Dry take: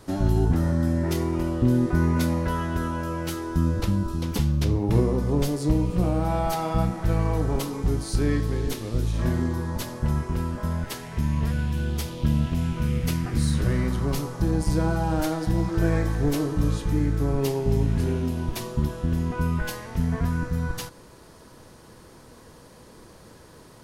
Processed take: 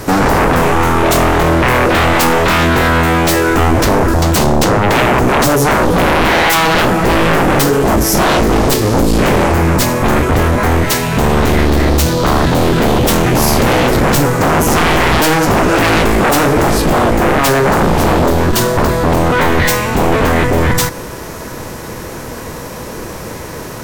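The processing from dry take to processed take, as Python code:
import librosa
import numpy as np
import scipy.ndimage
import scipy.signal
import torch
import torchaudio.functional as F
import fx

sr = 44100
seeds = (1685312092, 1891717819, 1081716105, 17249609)

y = fx.fold_sine(x, sr, drive_db=19, ceiling_db=-7.5)
y = fx.formant_shift(y, sr, semitones=4)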